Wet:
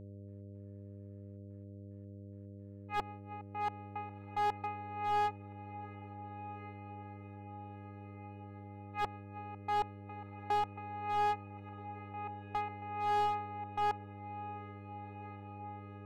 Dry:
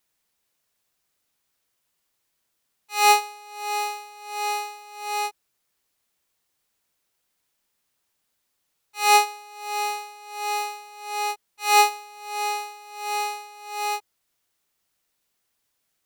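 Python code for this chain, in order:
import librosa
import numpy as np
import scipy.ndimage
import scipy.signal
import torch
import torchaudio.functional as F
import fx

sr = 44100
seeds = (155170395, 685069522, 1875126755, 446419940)

p1 = scipy.signal.sosfilt(scipy.signal.butter(4, 2000.0, 'lowpass', fs=sr, output='sos'), x)
p2 = fx.comb_fb(p1, sr, f0_hz=880.0, decay_s=0.31, harmonics='all', damping=0.0, mix_pct=80)
p3 = fx.gate_flip(p2, sr, shuts_db=-31.0, range_db=-33)
p4 = fx.notch_comb(p3, sr, f0_hz=380.0)
p5 = fx.step_gate(p4, sr, bpm=110, pattern='..x.xxxxxx.x..x', floor_db=-24.0, edge_ms=4.5)
p6 = fx.dmg_buzz(p5, sr, base_hz=100.0, harmonics=6, level_db=-62.0, tilt_db=-6, odd_only=False)
p7 = p6 + fx.echo_diffused(p6, sr, ms=1453, feedback_pct=59, wet_db=-15.5, dry=0)
p8 = fx.slew_limit(p7, sr, full_power_hz=7.7)
y = p8 * 10.0 ** (13.0 / 20.0)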